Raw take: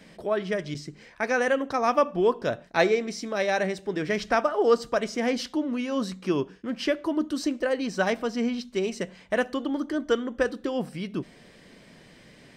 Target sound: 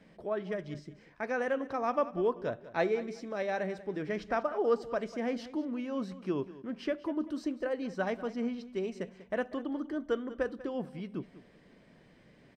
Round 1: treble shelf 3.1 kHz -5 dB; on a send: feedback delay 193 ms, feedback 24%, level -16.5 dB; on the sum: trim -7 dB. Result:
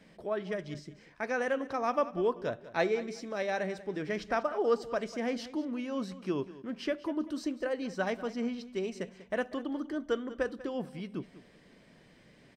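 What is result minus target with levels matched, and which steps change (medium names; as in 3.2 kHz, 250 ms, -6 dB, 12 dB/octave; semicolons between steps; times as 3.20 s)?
8 kHz band +6.0 dB
change: treble shelf 3.1 kHz -13 dB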